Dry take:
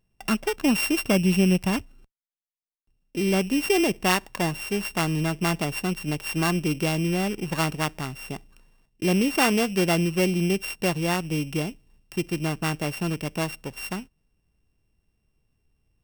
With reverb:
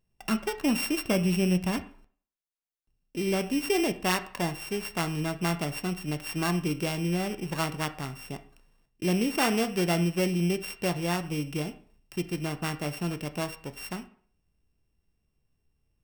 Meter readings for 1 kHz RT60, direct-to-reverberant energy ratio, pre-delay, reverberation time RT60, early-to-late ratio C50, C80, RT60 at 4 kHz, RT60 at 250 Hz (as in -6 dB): 0.50 s, 9.0 dB, 6 ms, 0.50 s, 14.5 dB, 18.5 dB, 0.45 s, 0.45 s